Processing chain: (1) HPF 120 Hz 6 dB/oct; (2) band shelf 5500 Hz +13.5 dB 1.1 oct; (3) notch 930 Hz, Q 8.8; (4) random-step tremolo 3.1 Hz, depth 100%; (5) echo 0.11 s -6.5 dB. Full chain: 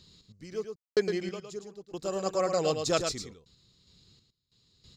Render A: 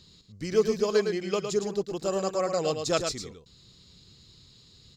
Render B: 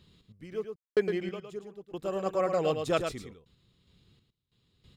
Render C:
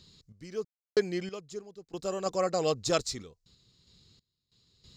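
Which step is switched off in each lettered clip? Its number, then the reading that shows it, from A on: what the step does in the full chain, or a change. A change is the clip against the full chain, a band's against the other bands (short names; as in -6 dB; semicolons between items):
4, momentary loudness spread change -8 LU; 2, 8 kHz band -12.0 dB; 5, loudness change -1.0 LU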